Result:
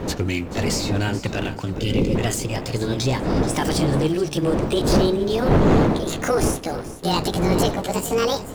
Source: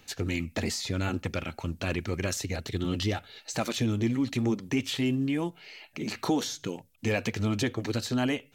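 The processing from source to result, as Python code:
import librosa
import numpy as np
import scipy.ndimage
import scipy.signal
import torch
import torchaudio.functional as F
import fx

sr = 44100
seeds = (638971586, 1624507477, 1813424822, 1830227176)

p1 = fx.pitch_glide(x, sr, semitones=11.0, runs='starting unshifted')
p2 = fx.dmg_wind(p1, sr, seeds[0], corner_hz=410.0, level_db=-29.0)
p3 = fx.spec_erase(p2, sr, start_s=1.78, length_s=0.37, low_hz=560.0, high_hz=2000.0)
p4 = fx.leveller(p3, sr, passes=2)
y = p4 + fx.echo_feedback(p4, sr, ms=432, feedback_pct=26, wet_db=-15, dry=0)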